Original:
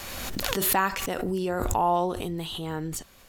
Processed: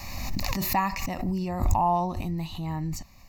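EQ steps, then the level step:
low-shelf EQ 340 Hz +7.5 dB
notch filter 1,500 Hz, Q 7
phaser with its sweep stopped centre 2,200 Hz, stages 8
0.0 dB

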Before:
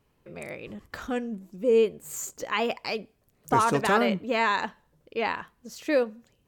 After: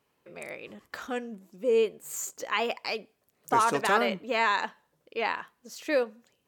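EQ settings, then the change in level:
high-pass filter 450 Hz 6 dB per octave
0.0 dB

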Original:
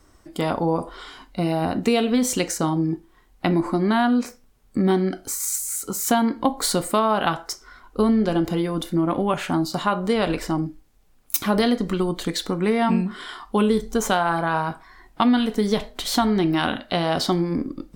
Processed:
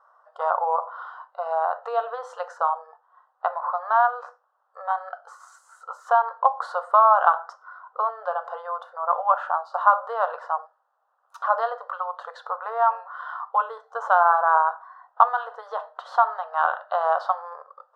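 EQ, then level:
linear-phase brick-wall high-pass 440 Hz
low-pass with resonance 1,300 Hz, resonance Q 2.6
phaser with its sweep stopped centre 930 Hz, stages 4
+1.0 dB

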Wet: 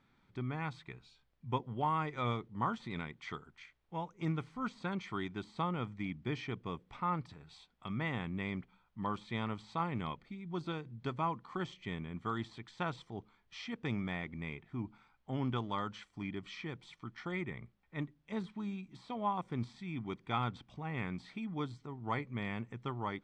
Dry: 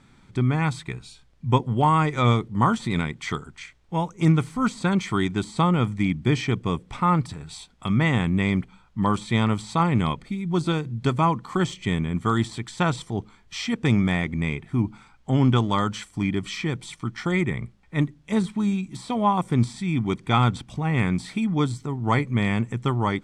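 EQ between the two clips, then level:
high-frequency loss of the air 230 metres
first-order pre-emphasis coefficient 0.97
tilt shelving filter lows +8.5 dB, about 1,300 Hz
+3.0 dB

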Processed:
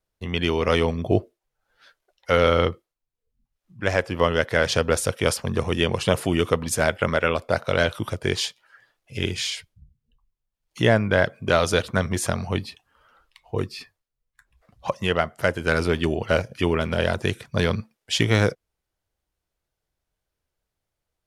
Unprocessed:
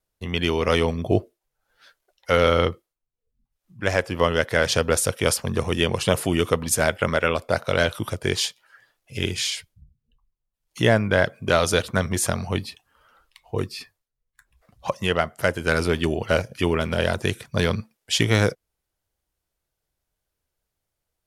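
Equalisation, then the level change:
high-shelf EQ 7,500 Hz −8 dB
0.0 dB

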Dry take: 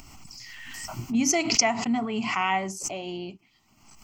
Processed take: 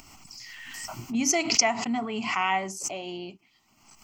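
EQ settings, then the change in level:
low-shelf EQ 200 Hz −8 dB
0.0 dB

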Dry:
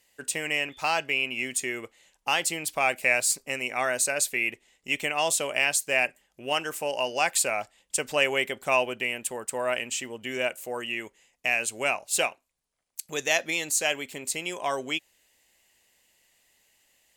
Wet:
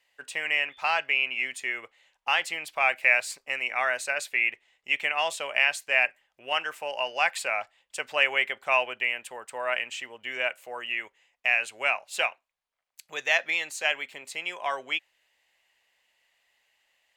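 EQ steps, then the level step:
three-way crossover with the lows and the highs turned down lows −19 dB, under 590 Hz, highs −15 dB, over 4,000 Hz
low-shelf EQ 280 Hz +5 dB
dynamic equaliser 1,900 Hz, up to +4 dB, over −37 dBFS, Q 1.2
0.0 dB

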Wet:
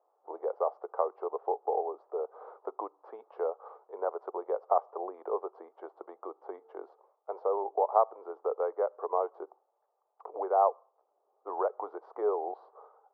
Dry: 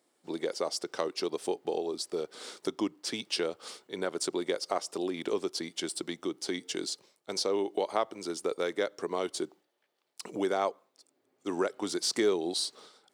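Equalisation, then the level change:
Chebyshev band-pass filter 440–1,200 Hz, order 3
parametric band 810 Hz +9 dB 0.79 octaves
0.0 dB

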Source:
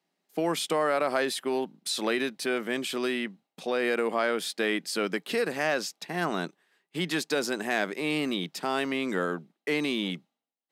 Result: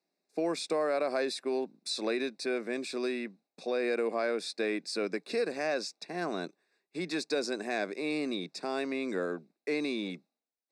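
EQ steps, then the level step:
Butterworth band-reject 3,100 Hz, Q 3.5
loudspeaker in its box 250–8,000 Hz, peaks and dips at 890 Hz −8 dB, 1,300 Hz −8 dB, 1,900 Hz −7 dB, 3,000 Hz −4 dB, 6,700 Hz −6 dB
−1.5 dB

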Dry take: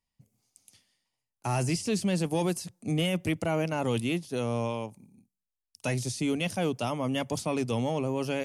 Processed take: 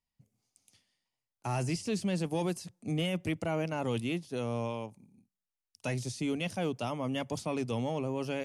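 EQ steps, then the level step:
high-shelf EQ 9,800 Hz −8.5 dB
−4.0 dB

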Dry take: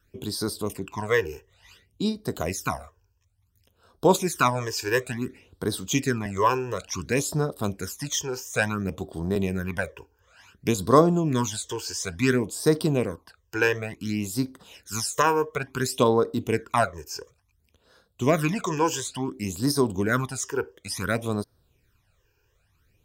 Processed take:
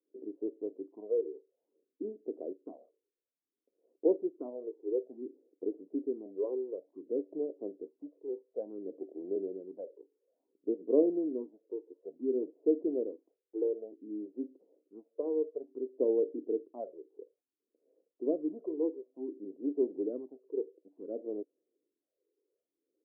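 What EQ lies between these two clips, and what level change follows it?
elliptic high-pass filter 300 Hz, stop band 70 dB
Butterworth low-pass 520 Hz 36 dB per octave
−4.5 dB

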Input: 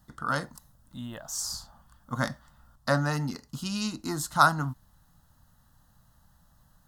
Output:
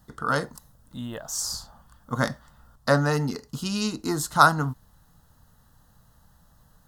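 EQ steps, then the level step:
parametric band 430 Hz +10.5 dB 0.38 octaves
+3.5 dB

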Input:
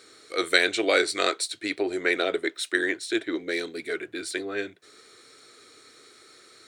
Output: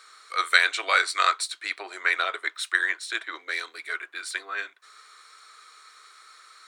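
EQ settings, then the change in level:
high-pass with resonance 1,100 Hz, resonance Q 3.4
−1.0 dB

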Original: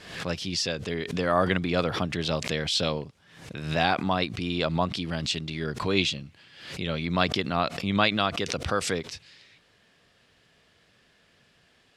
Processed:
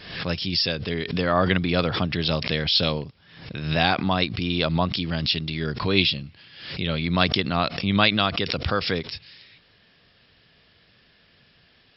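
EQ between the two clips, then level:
linear-phase brick-wall low-pass 5,500 Hz
low-shelf EQ 240 Hz +7 dB
high-shelf EQ 2,200 Hz +8 dB
0.0 dB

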